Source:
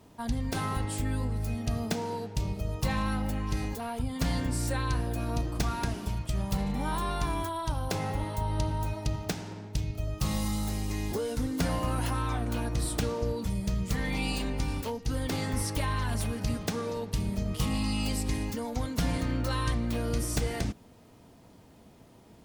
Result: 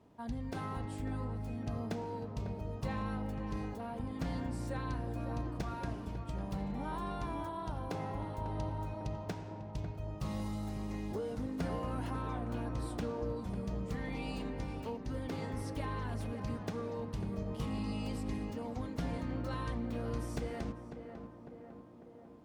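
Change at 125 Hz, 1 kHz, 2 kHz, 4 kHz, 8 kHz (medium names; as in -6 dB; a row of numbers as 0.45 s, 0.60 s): -8.0 dB, -7.0 dB, -10.0 dB, -14.0 dB, -18.5 dB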